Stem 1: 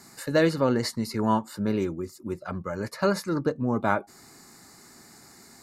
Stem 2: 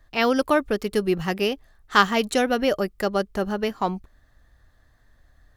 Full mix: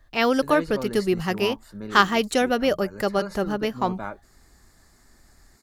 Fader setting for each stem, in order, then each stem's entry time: -9.5, 0.0 dB; 0.15, 0.00 s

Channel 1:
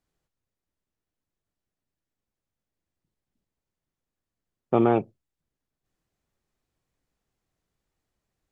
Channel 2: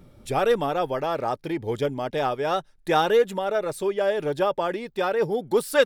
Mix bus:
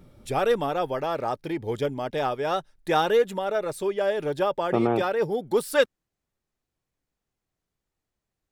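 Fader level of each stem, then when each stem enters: -3.0, -1.5 dB; 0.00, 0.00 s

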